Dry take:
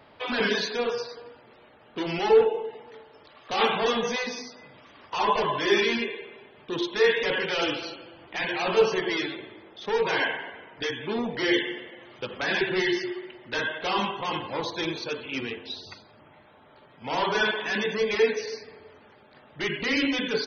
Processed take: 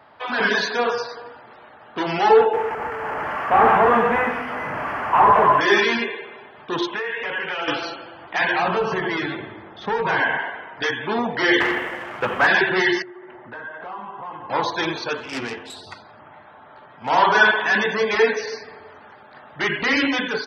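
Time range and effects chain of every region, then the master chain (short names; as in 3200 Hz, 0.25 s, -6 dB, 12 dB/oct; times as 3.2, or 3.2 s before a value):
2.53–5.61 delta modulation 16 kbps, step -32.5 dBFS + LPF 2400 Hz + sample leveller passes 1
6.87–7.68 resonant high shelf 3400 Hz -6 dB, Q 3 + compressor 5:1, threshold -32 dBFS
8.59–10.38 tone controls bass +11 dB, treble -7 dB + compressor 2.5:1, threshold -27 dBFS
11.6–12.47 CVSD 16 kbps + sample leveller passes 2
13.02–14.5 LPF 1500 Hz + compressor, threshold -42 dBFS
15.17–17.1 self-modulated delay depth 0.15 ms + air absorption 75 m
whole clip: AGC gain up to 6 dB; HPF 54 Hz; band shelf 1100 Hz +8 dB; gain -2 dB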